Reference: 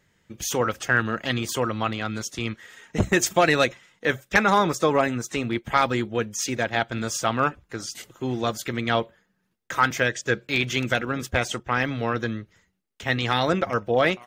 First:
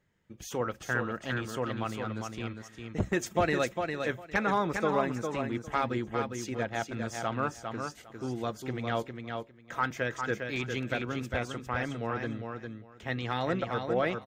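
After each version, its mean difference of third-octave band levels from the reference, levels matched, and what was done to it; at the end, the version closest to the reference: 5.5 dB: treble shelf 2.2 kHz -8.5 dB; on a send: feedback delay 404 ms, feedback 17%, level -5.5 dB; on the sum: trim -7.5 dB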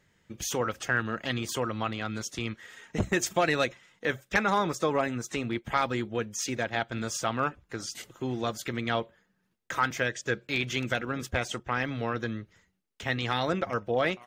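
1.0 dB: treble shelf 10 kHz -3.5 dB; in parallel at +0.5 dB: compression, threshold -31 dBFS, peak gain reduction 16 dB; on the sum: trim -8 dB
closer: second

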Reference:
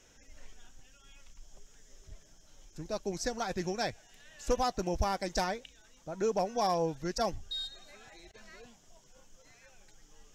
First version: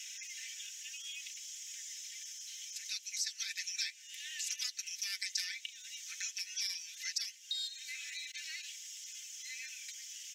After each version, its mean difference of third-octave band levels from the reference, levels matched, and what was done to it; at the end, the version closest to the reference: 19.5 dB: steep high-pass 2 kHz 48 dB/octave; comb 3.9 ms; compression 2.5:1, threshold -59 dBFS, peak gain reduction 17 dB; trim +17 dB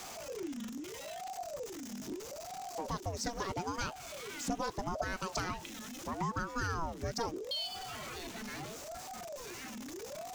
14.0 dB: jump at every zero crossing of -45 dBFS; compression 3:1, threshold -39 dBFS, peak gain reduction 11.5 dB; ring modulator with a swept carrier 490 Hz, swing 55%, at 0.77 Hz; trim +6 dB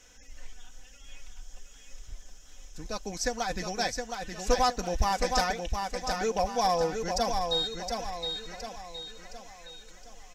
6.0 dB: peaking EQ 260 Hz -6.5 dB 2.6 oct; comb 4 ms, depth 54%; feedback delay 716 ms, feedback 44%, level -5 dB; trim +4.5 dB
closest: third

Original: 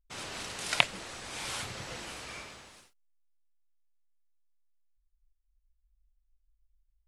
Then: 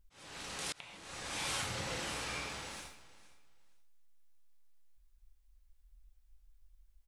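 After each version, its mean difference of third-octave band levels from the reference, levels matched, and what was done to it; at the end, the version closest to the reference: 7.5 dB: gated-style reverb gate 180 ms falling, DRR 3.5 dB; compression 2:1, threshold -51 dBFS, peak gain reduction 18.5 dB; slow attack 750 ms; feedback delay 464 ms, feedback 21%, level -18 dB; trim +8.5 dB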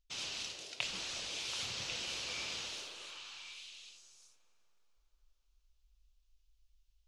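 5.5 dB: high-order bell 4.1 kHz +12.5 dB; reverse; compression 6:1, threshold -40 dBFS, peak gain reduction 30 dB; reverse; repeats whose band climbs or falls 365 ms, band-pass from 460 Hz, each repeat 1.4 oct, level -0.5 dB; plate-style reverb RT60 4.7 s, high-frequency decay 0.45×, pre-delay 120 ms, DRR 16.5 dB; trim +1 dB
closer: second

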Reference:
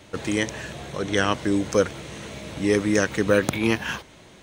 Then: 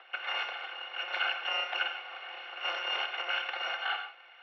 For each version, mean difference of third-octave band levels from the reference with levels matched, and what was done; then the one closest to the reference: 16.5 dB: bit-reversed sample order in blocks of 256 samples; peak limiter -11.5 dBFS, peak gain reduction 6.5 dB; gated-style reverb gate 170 ms flat, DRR 5.5 dB; mistuned SSB +92 Hz 460–2700 Hz; trim +6 dB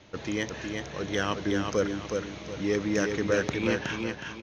5.5 dB: steep low-pass 6.6 kHz 96 dB/octave; in parallel at -10 dB: hard clipper -21 dBFS, distortion -7 dB; on the sum: feedback delay 367 ms, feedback 33%, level -4.5 dB; trim -8 dB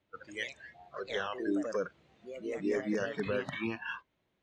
11.0 dB: spectral noise reduction 22 dB; low-pass 3.8 kHz 12 dB/octave; peak limiter -16.5 dBFS, peak gain reduction 9.5 dB; ever faster or slower copies 88 ms, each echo +2 st, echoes 2, each echo -6 dB; trim -7.5 dB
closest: second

